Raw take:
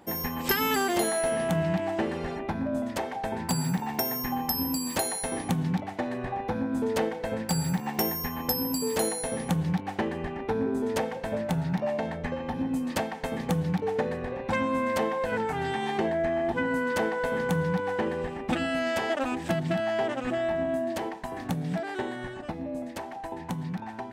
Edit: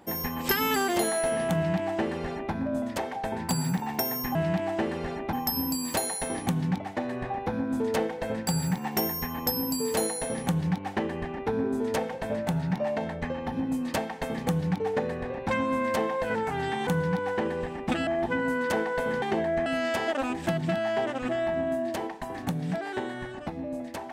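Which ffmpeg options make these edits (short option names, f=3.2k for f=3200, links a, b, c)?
-filter_complex "[0:a]asplit=7[a][b][c][d][e][f][g];[a]atrim=end=4.352[h];[b]atrim=start=1.548:end=2.532[i];[c]atrim=start=4.348:end=15.892[j];[d]atrim=start=17.478:end=18.682[k];[e]atrim=start=16.328:end=17.482[l];[f]atrim=start=15.888:end=16.332[m];[g]atrim=start=18.678[n];[h][i]acrossfade=d=0.004:c1=hsin:c2=hsin[o];[o][j]acrossfade=d=0.004:c1=hsin:c2=hsin[p];[p][k]acrossfade=d=0.004:c1=hsin:c2=hsin[q];[q][l]acrossfade=d=0.004:c1=hsin:c2=hsin[r];[r][m]acrossfade=d=0.004:c1=hsin:c2=hsin[s];[s][n]acrossfade=d=0.004:c1=hsin:c2=hsin"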